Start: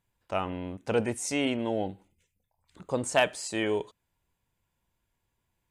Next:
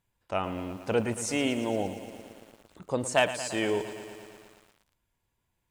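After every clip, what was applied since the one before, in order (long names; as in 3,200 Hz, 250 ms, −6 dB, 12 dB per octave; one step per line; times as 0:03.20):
feedback echo at a low word length 114 ms, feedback 80%, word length 8 bits, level −13 dB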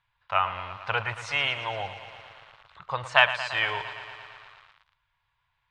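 drawn EQ curve 140 Hz 0 dB, 240 Hz −26 dB, 1,100 Hz +13 dB, 2,600 Hz +9 dB, 3,900 Hz +8 dB, 7,300 Hz −14 dB, 13,000 Hz −26 dB
level −1 dB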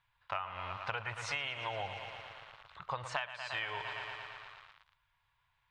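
downward compressor 16 to 1, threshold −32 dBFS, peak gain reduction 20.5 dB
level −1.5 dB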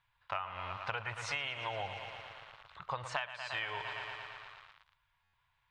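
buffer that repeats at 0:05.23, samples 512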